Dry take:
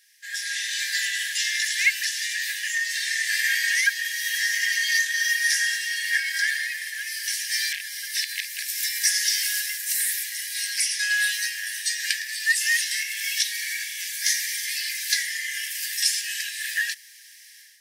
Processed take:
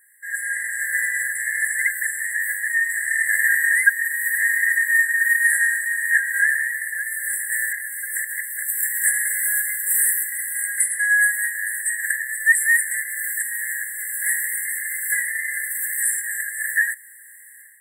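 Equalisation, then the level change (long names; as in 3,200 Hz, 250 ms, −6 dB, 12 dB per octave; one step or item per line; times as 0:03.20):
linear-phase brick-wall band-stop 2,100–7,500 Hz
flat-topped bell 3,300 Hz −12.5 dB 1.2 octaves
+7.0 dB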